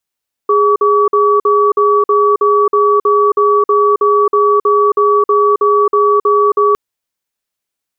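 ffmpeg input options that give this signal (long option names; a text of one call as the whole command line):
ffmpeg -f lavfi -i "aevalsrc='0.316*(sin(2*PI*413*t)+sin(2*PI*1140*t))*clip(min(mod(t,0.32),0.27-mod(t,0.32))/0.005,0,1)':duration=6.26:sample_rate=44100" out.wav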